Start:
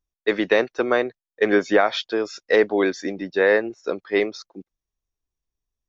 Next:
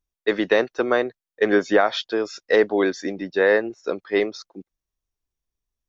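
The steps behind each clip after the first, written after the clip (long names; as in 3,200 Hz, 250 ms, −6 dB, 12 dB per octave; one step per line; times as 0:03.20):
dynamic equaliser 2,300 Hz, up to −6 dB, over −44 dBFS, Q 6.9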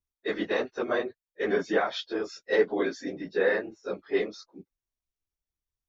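random phases in long frames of 50 ms
level −7.5 dB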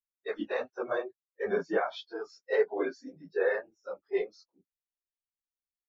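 noise reduction from a noise print of the clip's start 19 dB
low-pass filter 2,100 Hz 6 dB per octave
level −2.5 dB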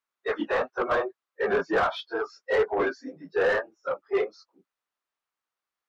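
parametric band 1,200 Hz +6.5 dB 0.75 octaves
mid-hump overdrive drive 20 dB, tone 1,500 Hz, clips at −14.5 dBFS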